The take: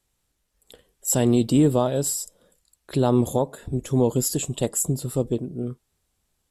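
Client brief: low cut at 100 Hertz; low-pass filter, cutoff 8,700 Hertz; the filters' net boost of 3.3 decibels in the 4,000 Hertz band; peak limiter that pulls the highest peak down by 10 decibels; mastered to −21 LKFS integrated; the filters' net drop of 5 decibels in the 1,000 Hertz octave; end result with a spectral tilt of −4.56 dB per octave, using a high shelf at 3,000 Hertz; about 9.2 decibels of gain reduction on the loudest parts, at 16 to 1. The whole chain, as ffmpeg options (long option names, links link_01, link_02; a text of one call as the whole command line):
ffmpeg -i in.wav -af "highpass=100,lowpass=8700,equalizer=frequency=1000:width_type=o:gain=-7,highshelf=frequency=3000:gain=-4,equalizer=frequency=4000:width_type=o:gain=8,acompressor=threshold=-23dB:ratio=16,volume=13dB,alimiter=limit=-10dB:level=0:latency=1" out.wav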